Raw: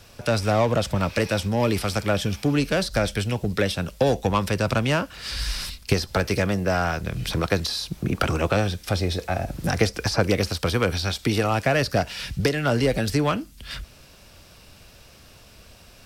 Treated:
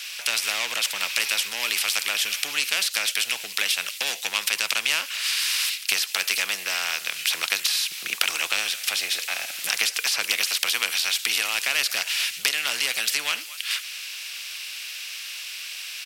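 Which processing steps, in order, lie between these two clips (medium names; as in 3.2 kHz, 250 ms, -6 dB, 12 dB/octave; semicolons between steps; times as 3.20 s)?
resonant high-pass 2.6 kHz, resonance Q 4.3; echo from a far wall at 39 m, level -28 dB; spectrum-flattening compressor 2:1; trim +3.5 dB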